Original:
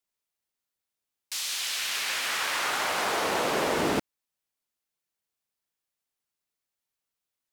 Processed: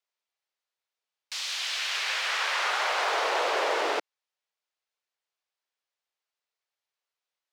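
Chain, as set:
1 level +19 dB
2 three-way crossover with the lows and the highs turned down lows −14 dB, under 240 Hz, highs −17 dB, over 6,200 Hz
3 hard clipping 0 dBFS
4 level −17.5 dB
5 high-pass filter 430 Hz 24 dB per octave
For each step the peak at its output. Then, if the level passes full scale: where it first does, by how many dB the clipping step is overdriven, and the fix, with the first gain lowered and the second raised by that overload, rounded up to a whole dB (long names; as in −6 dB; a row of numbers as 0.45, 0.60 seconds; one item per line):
+5.0, +3.5, 0.0, −17.5, −15.0 dBFS
step 1, 3.5 dB
step 1 +15 dB, step 4 −13.5 dB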